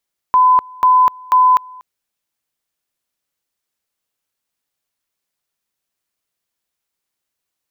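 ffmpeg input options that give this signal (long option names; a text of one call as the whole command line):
ffmpeg -f lavfi -i "aevalsrc='pow(10,(-7-26*gte(mod(t,0.49),0.25))/20)*sin(2*PI*1010*t)':duration=1.47:sample_rate=44100" out.wav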